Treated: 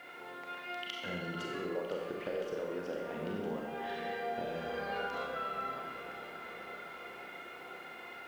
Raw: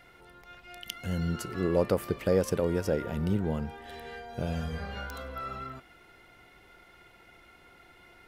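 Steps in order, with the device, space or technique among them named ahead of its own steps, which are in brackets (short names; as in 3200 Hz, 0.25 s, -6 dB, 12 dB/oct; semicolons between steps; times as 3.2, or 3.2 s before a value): baby monitor (BPF 330–3200 Hz; compressor, threshold -45 dBFS, peak gain reduction 21.5 dB; white noise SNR 29 dB); echo with dull and thin repeats by turns 0.254 s, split 1400 Hz, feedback 87%, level -11.5 dB; Schroeder reverb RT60 0.99 s, combs from 30 ms, DRR -0.5 dB; gain +6 dB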